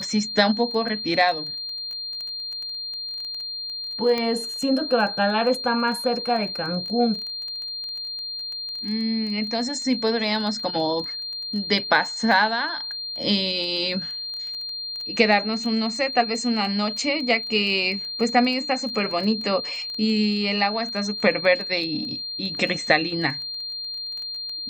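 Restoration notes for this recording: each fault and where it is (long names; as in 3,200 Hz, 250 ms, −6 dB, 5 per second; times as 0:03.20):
surface crackle 11 per second −30 dBFS
whistle 4,200 Hz −29 dBFS
0:04.18: click −13 dBFS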